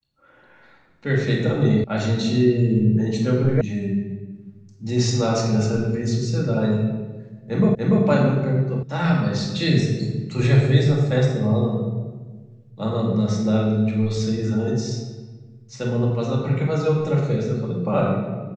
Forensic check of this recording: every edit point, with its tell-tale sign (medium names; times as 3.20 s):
1.84 s: sound stops dead
3.61 s: sound stops dead
7.75 s: repeat of the last 0.29 s
8.83 s: sound stops dead